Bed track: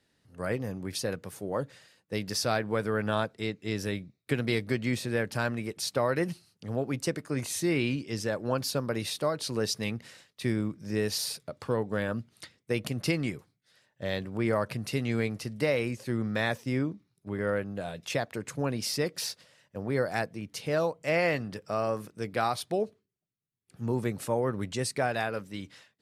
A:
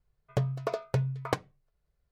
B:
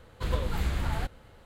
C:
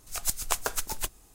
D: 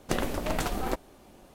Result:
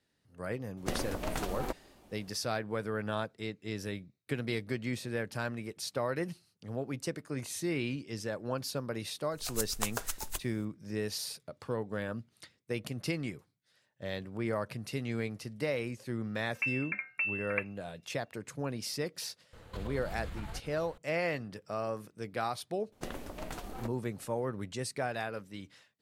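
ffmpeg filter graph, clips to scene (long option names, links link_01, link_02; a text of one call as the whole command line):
ffmpeg -i bed.wav -i cue0.wav -i cue1.wav -i cue2.wav -i cue3.wav -filter_complex "[4:a]asplit=2[link_01][link_02];[0:a]volume=-6dB[link_03];[1:a]lowpass=frequency=2400:width_type=q:width=0.5098,lowpass=frequency=2400:width_type=q:width=0.6013,lowpass=frequency=2400:width_type=q:width=0.9,lowpass=frequency=2400:width_type=q:width=2.563,afreqshift=-2800[link_04];[2:a]acompressor=threshold=-38dB:ratio=6:attack=3.2:release=140:knee=1:detection=peak[link_05];[link_01]atrim=end=1.54,asetpts=PTS-STARTPTS,volume=-6dB,afade=type=in:duration=0.004:curve=hsin,afade=type=out:start_time=1.536:duration=0.004:curve=hsin,adelay=770[link_06];[3:a]atrim=end=1.34,asetpts=PTS-STARTPTS,volume=-6dB,afade=type=in:duration=0.004:curve=hsin,afade=type=out:start_time=1.336:duration=0.004:curve=hsin,adelay=9310[link_07];[link_04]atrim=end=2.11,asetpts=PTS-STARTPTS,volume=-5.5dB,afade=type=in:duration=0.004:curve=hsin,afade=type=out:start_time=2.106:duration=0.004:curve=hsin,adelay=16250[link_08];[link_05]atrim=end=1.45,asetpts=PTS-STARTPTS,afade=type=in:duration=0.004:curve=hsin,afade=type=out:start_time=1.446:duration=0.004:curve=hsin,adelay=19530[link_09];[link_02]atrim=end=1.54,asetpts=PTS-STARTPTS,volume=-12dB,afade=type=in:duration=0.004:curve=hsin,afade=type=out:start_time=1.536:duration=0.004:curve=hsin,adelay=1010772S[link_10];[link_03][link_06][link_07][link_08][link_09][link_10]amix=inputs=6:normalize=0" out.wav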